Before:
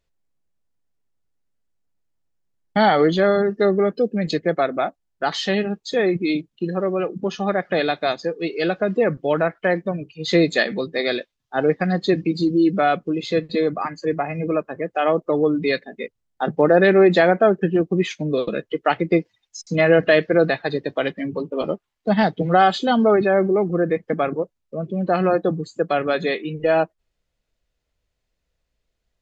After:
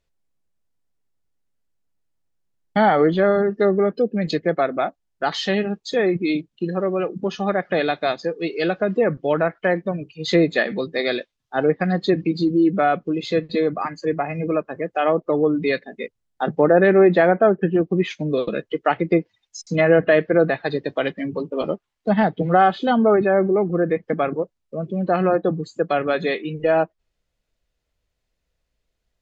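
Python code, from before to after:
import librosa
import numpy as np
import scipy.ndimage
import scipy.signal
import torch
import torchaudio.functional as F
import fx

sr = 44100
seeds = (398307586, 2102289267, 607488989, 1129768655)

y = fx.env_lowpass_down(x, sr, base_hz=2100.0, full_db=-13.0)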